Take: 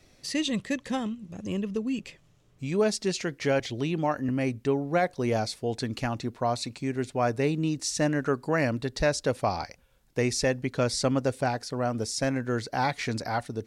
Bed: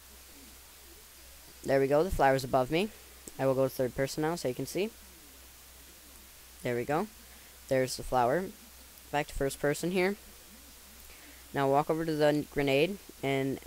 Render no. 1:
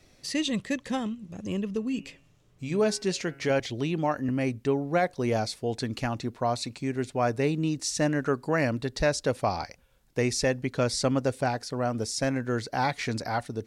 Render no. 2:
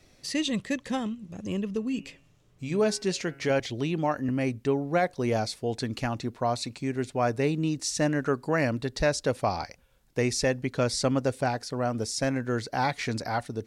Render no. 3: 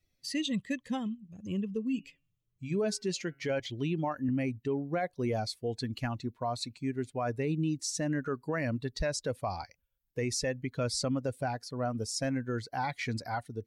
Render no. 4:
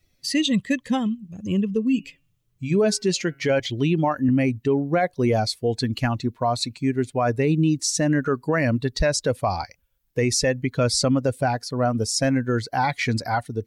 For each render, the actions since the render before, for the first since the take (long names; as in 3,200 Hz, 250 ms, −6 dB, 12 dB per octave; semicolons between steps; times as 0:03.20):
0:01.72–0:03.50: hum removal 137.8 Hz, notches 22
no processing that can be heard
spectral dynamics exaggerated over time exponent 1.5; brickwall limiter −23.5 dBFS, peak gain reduction 7.5 dB
level +11 dB